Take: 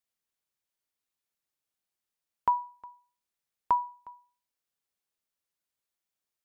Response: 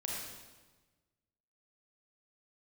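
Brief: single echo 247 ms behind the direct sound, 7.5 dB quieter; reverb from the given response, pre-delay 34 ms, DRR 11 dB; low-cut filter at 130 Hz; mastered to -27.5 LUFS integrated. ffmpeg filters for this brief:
-filter_complex "[0:a]highpass=130,aecho=1:1:247:0.422,asplit=2[s0][s1];[1:a]atrim=start_sample=2205,adelay=34[s2];[s1][s2]afir=irnorm=-1:irlink=0,volume=0.224[s3];[s0][s3]amix=inputs=2:normalize=0,volume=1.5"

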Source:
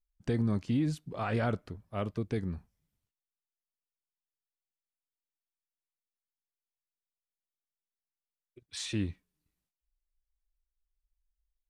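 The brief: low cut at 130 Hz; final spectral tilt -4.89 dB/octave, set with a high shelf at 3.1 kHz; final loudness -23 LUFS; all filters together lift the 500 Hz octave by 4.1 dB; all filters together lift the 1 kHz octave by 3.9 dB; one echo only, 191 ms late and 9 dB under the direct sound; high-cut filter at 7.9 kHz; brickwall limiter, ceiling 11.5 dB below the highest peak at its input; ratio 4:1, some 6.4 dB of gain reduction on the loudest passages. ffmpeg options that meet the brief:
-af "highpass=130,lowpass=7900,equalizer=f=500:t=o:g=4,equalizer=f=1000:t=o:g=3.5,highshelf=f=3100:g=4.5,acompressor=threshold=0.0251:ratio=4,alimiter=level_in=2.51:limit=0.0631:level=0:latency=1,volume=0.398,aecho=1:1:191:0.355,volume=9.44"

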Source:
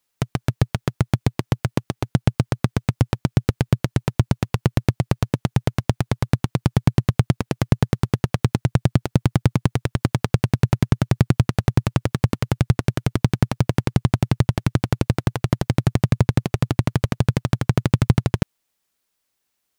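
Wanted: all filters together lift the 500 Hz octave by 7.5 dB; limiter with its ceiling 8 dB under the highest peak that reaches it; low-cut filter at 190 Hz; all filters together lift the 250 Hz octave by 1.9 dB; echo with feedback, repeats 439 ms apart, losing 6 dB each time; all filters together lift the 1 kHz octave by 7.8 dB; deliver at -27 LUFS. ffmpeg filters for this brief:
-af "highpass=190,equalizer=f=250:t=o:g=4,equalizer=f=500:t=o:g=6.5,equalizer=f=1000:t=o:g=7.5,alimiter=limit=0.447:level=0:latency=1,aecho=1:1:439|878|1317|1756|2195|2634:0.501|0.251|0.125|0.0626|0.0313|0.0157,volume=0.944"

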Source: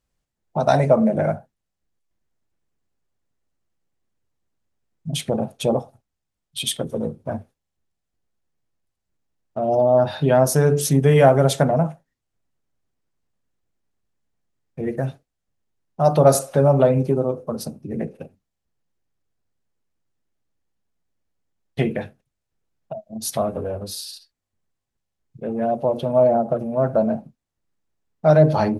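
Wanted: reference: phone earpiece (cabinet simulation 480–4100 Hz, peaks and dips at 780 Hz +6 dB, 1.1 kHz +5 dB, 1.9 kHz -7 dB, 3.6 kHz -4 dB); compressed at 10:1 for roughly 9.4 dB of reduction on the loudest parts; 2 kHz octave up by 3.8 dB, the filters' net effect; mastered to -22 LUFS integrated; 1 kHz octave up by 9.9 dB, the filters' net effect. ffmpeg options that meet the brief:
-af "equalizer=f=1000:t=o:g=8,equalizer=f=2000:t=o:g=4.5,acompressor=threshold=0.178:ratio=10,highpass=480,equalizer=f=780:t=q:w=4:g=6,equalizer=f=1100:t=q:w=4:g=5,equalizer=f=1900:t=q:w=4:g=-7,equalizer=f=3600:t=q:w=4:g=-4,lowpass=f=4100:w=0.5412,lowpass=f=4100:w=1.3066,volume=1.12"

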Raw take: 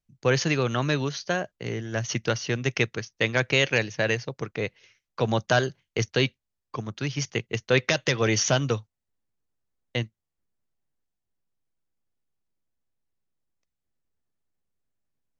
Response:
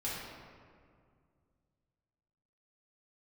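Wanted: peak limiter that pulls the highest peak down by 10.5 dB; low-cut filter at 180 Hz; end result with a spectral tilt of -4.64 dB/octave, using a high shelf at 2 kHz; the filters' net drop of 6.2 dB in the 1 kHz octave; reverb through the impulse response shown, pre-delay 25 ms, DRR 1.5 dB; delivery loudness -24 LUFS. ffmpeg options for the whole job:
-filter_complex "[0:a]highpass=180,equalizer=f=1000:t=o:g=-8,highshelf=f=2000:g=-4.5,alimiter=limit=0.0891:level=0:latency=1,asplit=2[s0][s1];[1:a]atrim=start_sample=2205,adelay=25[s2];[s1][s2]afir=irnorm=-1:irlink=0,volume=0.531[s3];[s0][s3]amix=inputs=2:normalize=0,volume=2.37"

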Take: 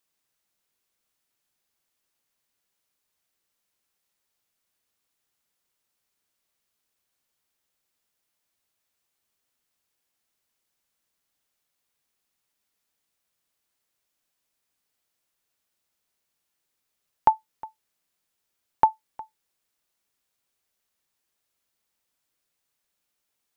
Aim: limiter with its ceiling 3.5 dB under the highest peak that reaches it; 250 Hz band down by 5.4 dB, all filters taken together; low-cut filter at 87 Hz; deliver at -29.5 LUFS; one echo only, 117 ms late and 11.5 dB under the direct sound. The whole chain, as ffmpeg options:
-af "highpass=87,equalizer=f=250:t=o:g=-7.5,alimiter=limit=0.335:level=0:latency=1,aecho=1:1:117:0.266,volume=0.891"

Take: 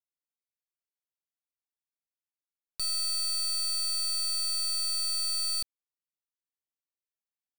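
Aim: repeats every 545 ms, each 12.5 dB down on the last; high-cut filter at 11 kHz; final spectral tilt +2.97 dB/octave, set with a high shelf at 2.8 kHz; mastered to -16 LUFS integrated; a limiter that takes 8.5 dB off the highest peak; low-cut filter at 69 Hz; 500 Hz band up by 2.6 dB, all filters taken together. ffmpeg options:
-af "highpass=69,lowpass=11000,equalizer=f=500:t=o:g=3.5,highshelf=f=2800:g=7.5,alimiter=level_in=1.68:limit=0.0631:level=0:latency=1,volume=0.596,aecho=1:1:545|1090|1635:0.237|0.0569|0.0137,volume=5.62"

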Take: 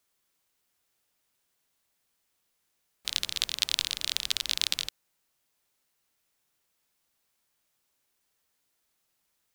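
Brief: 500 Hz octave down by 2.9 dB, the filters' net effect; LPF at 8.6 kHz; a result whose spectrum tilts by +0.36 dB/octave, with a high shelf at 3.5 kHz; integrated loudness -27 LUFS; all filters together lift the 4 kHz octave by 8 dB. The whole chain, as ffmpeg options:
-af "lowpass=8600,equalizer=f=500:t=o:g=-4,highshelf=f=3500:g=3,equalizer=f=4000:t=o:g=7.5,volume=0.562"

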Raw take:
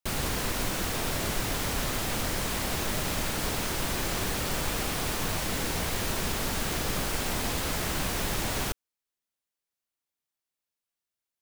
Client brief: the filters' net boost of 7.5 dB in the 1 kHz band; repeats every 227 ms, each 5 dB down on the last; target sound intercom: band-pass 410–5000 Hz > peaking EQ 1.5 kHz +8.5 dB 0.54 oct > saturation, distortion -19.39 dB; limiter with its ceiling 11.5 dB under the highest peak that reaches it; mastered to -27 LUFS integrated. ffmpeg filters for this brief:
-af "equalizer=f=1000:t=o:g=6.5,alimiter=level_in=1.33:limit=0.0631:level=0:latency=1,volume=0.75,highpass=410,lowpass=5000,equalizer=f=1500:t=o:w=0.54:g=8.5,aecho=1:1:227|454|681|908|1135|1362|1589:0.562|0.315|0.176|0.0988|0.0553|0.031|0.0173,asoftclip=threshold=0.0422,volume=2.51"

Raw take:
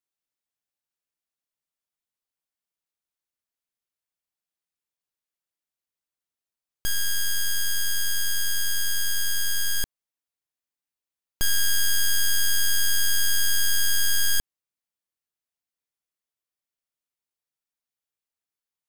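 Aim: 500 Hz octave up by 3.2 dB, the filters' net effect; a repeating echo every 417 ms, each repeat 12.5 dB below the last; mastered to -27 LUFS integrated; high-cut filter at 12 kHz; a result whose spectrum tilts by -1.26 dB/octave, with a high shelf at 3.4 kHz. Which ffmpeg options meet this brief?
-af "lowpass=12000,equalizer=f=500:t=o:g=4.5,highshelf=f=3400:g=-9,aecho=1:1:417|834|1251:0.237|0.0569|0.0137,volume=1.5"

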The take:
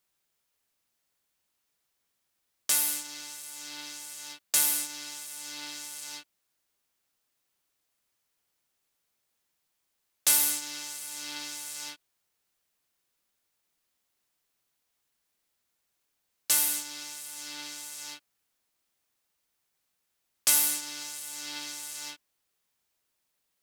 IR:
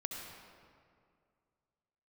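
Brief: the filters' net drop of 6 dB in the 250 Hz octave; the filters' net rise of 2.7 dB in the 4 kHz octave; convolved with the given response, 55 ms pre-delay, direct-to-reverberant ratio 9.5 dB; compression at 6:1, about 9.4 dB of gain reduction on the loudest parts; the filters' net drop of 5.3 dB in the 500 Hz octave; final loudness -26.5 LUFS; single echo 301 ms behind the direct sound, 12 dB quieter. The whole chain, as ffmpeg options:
-filter_complex "[0:a]equalizer=f=250:t=o:g=-5.5,equalizer=f=500:t=o:g=-5.5,equalizer=f=4000:t=o:g=3.5,acompressor=threshold=0.0447:ratio=6,aecho=1:1:301:0.251,asplit=2[s0][s1];[1:a]atrim=start_sample=2205,adelay=55[s2];[s1][s2]afir=irnorm=-1:irlink=0,volume=0.316[s3];[s0][s3]amix=inputs=2:normalize=0,volume=2.24"

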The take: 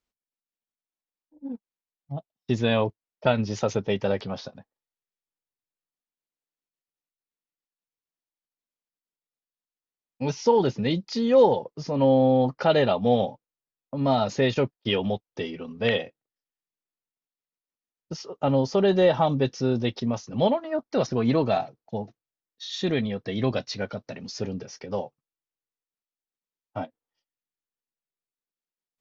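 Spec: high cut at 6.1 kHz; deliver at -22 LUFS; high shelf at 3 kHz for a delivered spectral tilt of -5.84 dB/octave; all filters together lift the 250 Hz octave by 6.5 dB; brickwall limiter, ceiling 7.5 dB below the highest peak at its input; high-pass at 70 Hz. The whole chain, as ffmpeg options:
-af "highpass=70,lowpass=6100,equalizer=f=250:t=o:g=7.5,highshelf=f=3000:g=4,volume=1.41,alimiter=limit=0.299:level=0:latency=1"

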